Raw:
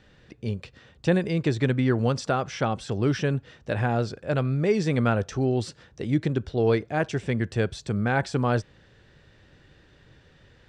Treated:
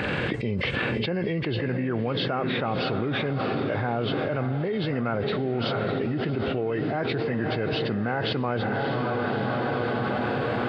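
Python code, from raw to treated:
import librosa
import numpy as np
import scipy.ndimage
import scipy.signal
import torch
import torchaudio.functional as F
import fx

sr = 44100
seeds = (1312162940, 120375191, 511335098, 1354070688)

p1 = fx.freq_compress(x, sr, knee_hz=1500.0, ratio=1.5)
p2 = scipy.signal.sosfilt(scipy.signal.butter(2, 94.0, 'highpass', fs=sr, output='sos'), p1)
p3 = fx.low_shelf(p2, sr, hz=190.0, db=-6.0)
p4 = p3 + fx.echo_diffused(p3, sr, ms=615, feedback_pct=59, wet_db=-11, dry=0)
p5 = fx.env_flatten(p4, sr, amount_pct=100)
y = F.gain(torch.from_numpy(p5), -7.5).numpy()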